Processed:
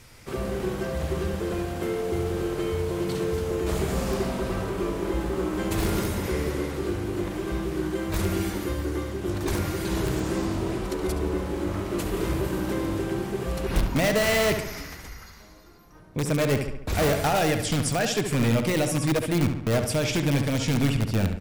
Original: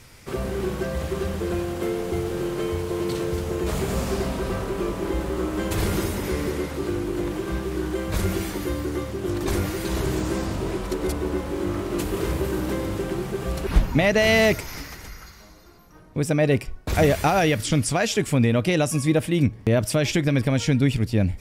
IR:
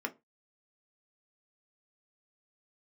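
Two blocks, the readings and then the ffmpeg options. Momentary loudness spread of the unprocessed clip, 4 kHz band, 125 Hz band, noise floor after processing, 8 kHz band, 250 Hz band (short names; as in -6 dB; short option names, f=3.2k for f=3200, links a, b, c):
8 LU, -1.5 dB, -2.5 dB, -47 dBFS, -1.0 dB, -2.5 dB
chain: -filter_complex "[0:a]asplit=2[a][b];[b]aeval=exprs='(mod(5.01*val(0)+1,2)-1)/5.01':c=same,volume=-4dB[c];[a][c]amix=inputs=2:normalize=0,asplit=2[d][e];[e]adelay=70,lowpass=f=3.9k:p=1,volume=-7dB,asplit=2[f][g];[g]adelay=70,lowpass=f=3.9k:p=1,volume=0.54,asplit=2[h][i];[i]adelay=70,lowpass=f=3.9k:p=1,volume=0.54,asplit=2[j][k];[k]adelay=70,lowpass=f=3.9k:p=1,volume=0.54,asplit=2[l][m];[m]adelay=70,lowpass=f=3.9k:p=1,volume=0.54,asplit=2[n][o];[o]adelay=70,lowpass=f=3.9k:p=1,volume=0.54,asplit=2[p][q];[q]adelay=70,lowpass=f=3.9k:p=1,volume=0.54[r];[d][f][h][j][l][n][p][r]amix=inputs=8:normalize=0,volume=-6.5dB"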